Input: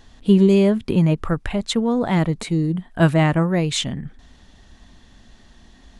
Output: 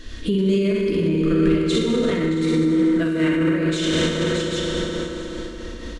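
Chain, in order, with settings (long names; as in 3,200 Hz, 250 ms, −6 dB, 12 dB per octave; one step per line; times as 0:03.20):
high-shelf EQ 7,900 Hz −9.5 dB
phaser with its sweep stopped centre 330 Hz, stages 4
on a send: multi-tap delay 62/620/786 ms −5.5/−12.5/−12 dB
on the sum: convolution reverb RT60 4.1 s, pre-delay 3 ms, DRR −4 dB
in parallel at +1.5 dB: downward compressor, threshold −39 dBFS, peak gain reduction 26.5 dB
on the sum: brickwall limiter −17.5 dBFS, peak gain reduction 14.5 dB
single-tap delay 672 ms −14 dB
amplitude modulation by smooth noise, depth 60%
level +8 dB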